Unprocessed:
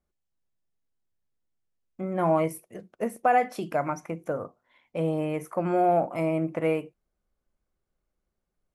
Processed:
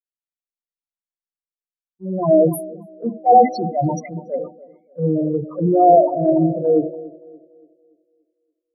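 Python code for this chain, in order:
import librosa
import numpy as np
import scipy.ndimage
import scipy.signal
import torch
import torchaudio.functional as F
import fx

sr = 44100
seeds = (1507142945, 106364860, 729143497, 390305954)

p1 = fx.transient(x, sr, attack_db=-8, sustain_db=6)
p2 = fx.leveller(p1, sr, passes=2)
p3 = fx.spec_topn(p2, sr, count=4)
p4 = p3 + fx.echo_banded(p3, sr, ms=286, feedback_pct=68, hz=380.0, wet_db=-10.0, dry=0)
p5 = fx.band_widen(p4, sr, depth_pct=100)
y = p5 * 10.0 ** (6.0 / 20.0)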